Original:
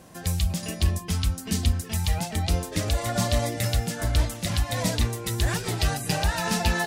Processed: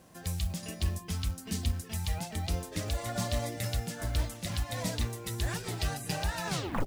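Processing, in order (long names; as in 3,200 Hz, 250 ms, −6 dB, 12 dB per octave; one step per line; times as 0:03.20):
turntable brake at the end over 0.40 s
log-companded quantiser 6 bits
level −8 dB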